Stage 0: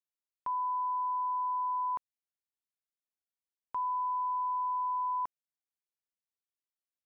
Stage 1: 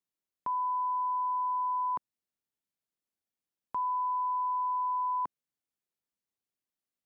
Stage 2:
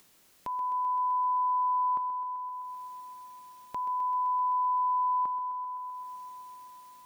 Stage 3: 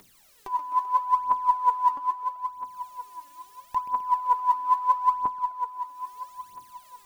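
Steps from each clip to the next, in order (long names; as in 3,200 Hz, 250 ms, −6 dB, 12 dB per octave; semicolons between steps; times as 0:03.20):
parametric band 220 Hz +9 dB 2.4 octaves
brickwall limiter −30 dBFS, peak gain reduction 4 dB; upward compression, threshold −38 dBFS; feedback echo with a high-pass in the loop 129 ms, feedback 85%, high-pass 230 Hz, level −11 dB
phase shifter 0.76 Hz, delay 3.6 ms, feedback 78%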